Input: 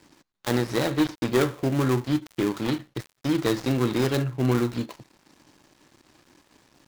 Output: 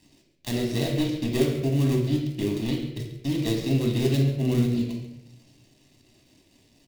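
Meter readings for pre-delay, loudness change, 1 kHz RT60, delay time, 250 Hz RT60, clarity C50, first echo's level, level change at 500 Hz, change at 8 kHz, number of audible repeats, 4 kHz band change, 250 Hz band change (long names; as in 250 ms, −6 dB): 3 ms, 0.0 dB, 0.65 s, 137 ms, 1.1 s, 5.5 dB, −14.0 dB, −2.0 dB, −1.0 dB, 1, 0.0 dB, 0.0 dB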